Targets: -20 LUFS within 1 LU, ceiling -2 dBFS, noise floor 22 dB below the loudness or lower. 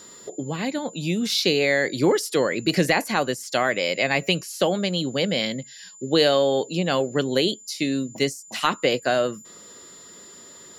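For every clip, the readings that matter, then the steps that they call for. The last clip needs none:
steady tone 7100 Hz; tone level -44 dBFS; loudness -23.0 LUFS; peak -7.5 dBFS; loudness target -20.0 LUFS
-> notch 7100 Hz, Q 30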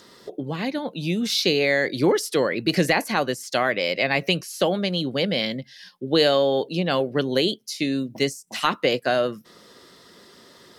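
steady tone none; loudness -23.0 LUFS; peak -7.5 dBFS; loudness target -20.0 LUFS
-> gain +3 dB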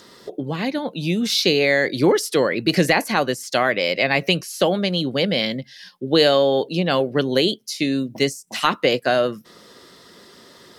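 loudness -20.0 LUFS; peak -4.5 dBFS; noise floor -48 dBFS

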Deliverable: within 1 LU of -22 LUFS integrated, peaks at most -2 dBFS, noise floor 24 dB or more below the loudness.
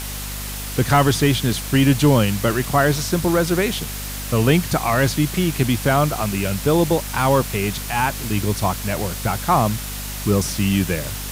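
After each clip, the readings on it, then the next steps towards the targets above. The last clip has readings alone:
hum 50 Hz; harmonics up to 250 Hz; hum level -29 dBFS; noise floor -29 dBFS; noise floor target -44 dBFS; loudness -19.5 LUFS; peak -2.0 dBFS; loudness target -22.0 LUFS
-> notches 50/100/150/200/250 Hz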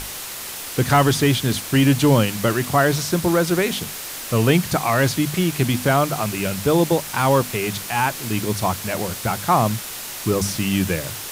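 hum none; noise floor -32 dBFS; noise floor target -44 dBFS
-> denoiser 12 dB, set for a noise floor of -32 dBFS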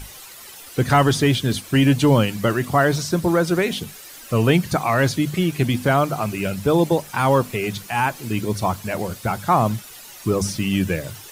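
noise floor -41 dBFS; noise floor target -45 dBFS
-> denoiser 6 dB, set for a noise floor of -41 dBFS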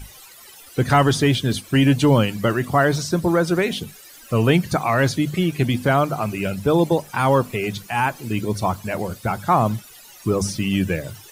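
noise floor -45 dBFS; loudness -20.5 LUFS; peak -3.5 dBFS; loudness target -22.0 LUFS
-> gain -1.5 dB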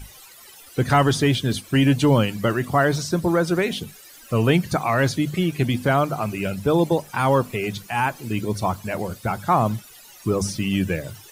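loudness -22.0 LUFS; peak -5.0 dBFS; noise floor -46 dBFS

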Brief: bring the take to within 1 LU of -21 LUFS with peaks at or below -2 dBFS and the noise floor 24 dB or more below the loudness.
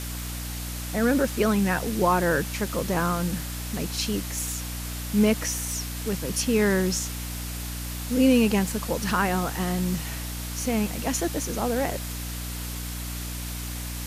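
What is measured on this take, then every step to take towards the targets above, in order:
hum 60 Hz; harmonics up to 300 Hz; hum level -32 dBFS; noise floor -33 dBFS; noise floor target -51 dBFS; loudness -26.5 LUFS; peak -9.0 dBFS; loudness target -21.0 LUFS
-> de-hum 60 Hz, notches 5; denoiser 18 dB, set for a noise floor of -33 dBFS; gain +5.5 dB

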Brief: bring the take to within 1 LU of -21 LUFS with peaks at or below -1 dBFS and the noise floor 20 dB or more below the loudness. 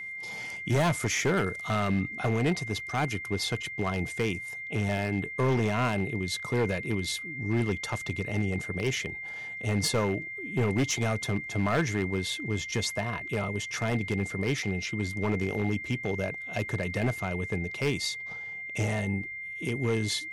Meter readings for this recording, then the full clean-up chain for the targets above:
clipped 1.4%; flat tops at -20.5 dBFS; steady tone 2100 Hz; tone level -36 dBFS; loudness -30.0 LUFS; peak -20.5 dBFS; loudness target -21.0 LUFS
-> clip repair -20.5 dBFS; notch 2100 Hz, Q 30; gain +9 dB

